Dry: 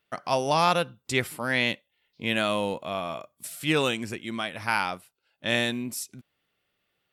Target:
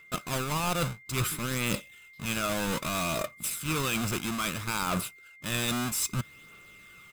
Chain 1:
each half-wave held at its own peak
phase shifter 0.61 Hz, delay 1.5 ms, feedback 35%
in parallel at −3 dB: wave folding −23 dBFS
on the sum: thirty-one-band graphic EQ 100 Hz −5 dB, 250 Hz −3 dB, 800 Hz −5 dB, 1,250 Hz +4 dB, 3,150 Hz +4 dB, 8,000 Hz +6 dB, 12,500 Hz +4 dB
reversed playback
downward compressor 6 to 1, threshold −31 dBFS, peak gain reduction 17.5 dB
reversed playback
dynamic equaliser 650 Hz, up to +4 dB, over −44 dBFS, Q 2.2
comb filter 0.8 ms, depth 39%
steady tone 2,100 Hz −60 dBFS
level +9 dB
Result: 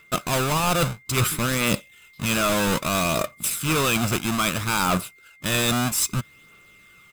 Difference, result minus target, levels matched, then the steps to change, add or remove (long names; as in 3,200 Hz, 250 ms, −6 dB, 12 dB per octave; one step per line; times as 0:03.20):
wave folding: distortion −11 dB; downward compressor: peak gain reduction −7 dB
change: wave folding −31 dBFS
change: downward compressor 6 to 1, threshold −39.5 dBFS, peak gain reduction 24 dB